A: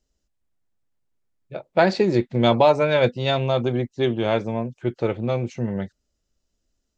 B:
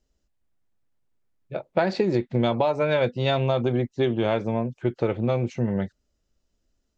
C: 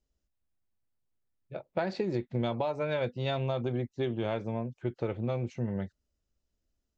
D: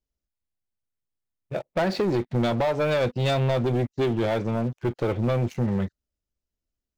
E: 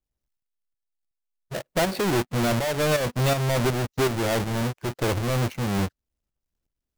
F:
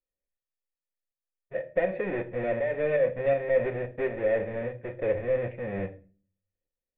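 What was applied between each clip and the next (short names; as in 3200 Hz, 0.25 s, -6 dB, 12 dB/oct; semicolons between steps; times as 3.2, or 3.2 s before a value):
high shelf 4700 Hz -7 dB; compressor 10:1, threshold -20 dBFS, peak gain reduction 9.5 dB; gain +2 dB
bell 78 Hz +4.5 dB 1.2 oct; gain -9 dB
sample leveller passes 3
half-waves squared off; tremolo saw up 2.7 Hz, depth 55%
vocal tract filter e; on a send at -8 dB: reverb RT60 0.35 s, pre-delay 3 ms; on the sum: gain +6 dB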